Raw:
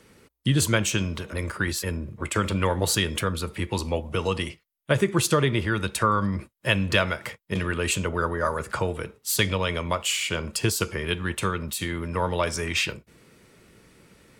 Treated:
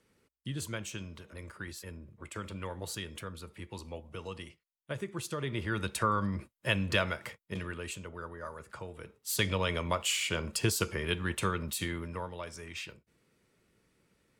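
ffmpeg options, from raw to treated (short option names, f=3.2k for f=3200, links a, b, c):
-af "volume=5dB,afade=t=in:st=5.36:d=0.43:silence=0.354813,afade=t=out:st=7.13:d=0.86:silence=0.316228,afade=t=in:st=8.91:d=0.69:silence=0.251189,afade=t=out:st=11.83:d=0.47:silence=0.266073"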